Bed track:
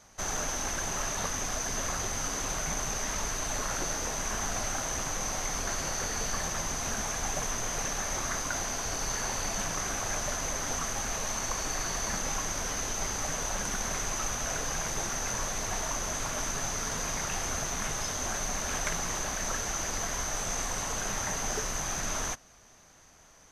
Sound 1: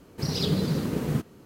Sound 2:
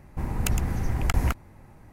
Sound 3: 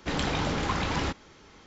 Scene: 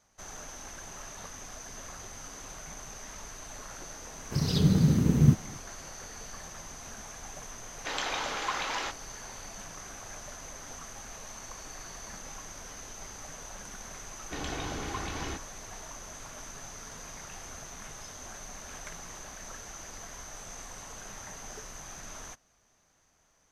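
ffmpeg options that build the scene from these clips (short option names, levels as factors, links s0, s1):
-filter_complex "[3:a]asplit=2[s0][s1];[0:a]volume=0.266[s2];[1:a]asubboost=boost=12:cutoff=250[s3];[s0]highpass=640[s4];[s1]aecho=1:1:2.7:0.38[s5];[s3]atrim=end=1.45,asetpts=PTS-STARTPTS,volume=0.668,afade=t=in:d=0.004:c=hsin,afade=t=out:st=1.446:d=0.004:c=hsin,adelay=182133S[s6];[s4]atrim=end=1.66,asetpts=PTS-STARTPTS,volume=0.891,afade=t=in:d=0.004:c=hsin,afade=t=out:st=1.656:d=0.004:c=hsin,adelay=7790[s7];[s5]atrim=end=1.66,asetpts=PTS-STARTPTS,volume=0.376,afade=t=in:d=0.004:c=hsin,afade=t=out:st=1.656:d=0.004:c=hsin,adelay=14250[s8];[s2][s6][s7][s8]amix=inputs=4:normalize=0"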